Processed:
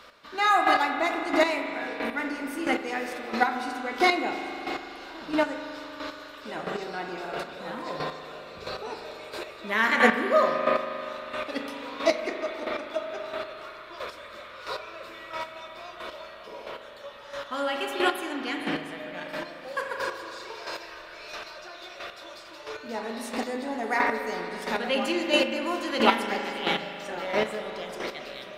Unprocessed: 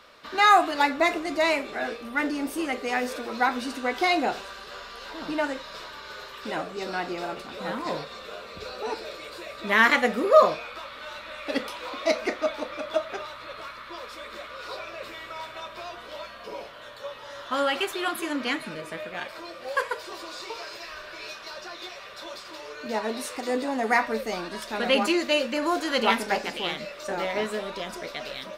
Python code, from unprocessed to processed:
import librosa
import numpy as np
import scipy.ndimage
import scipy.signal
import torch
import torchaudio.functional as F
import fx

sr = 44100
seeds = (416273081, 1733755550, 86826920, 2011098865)

y = fx.rev_spring(x, sr, rt60_s=3.2, pass_ms=(39,), chirp_ms=50, drr_db=2.0)
y = fx.chopper(y, sr, hz=1.5, depth_pct=60, duty_pct=15)
y = F.gain(torch.from_numpy(y), 2.5).numpy()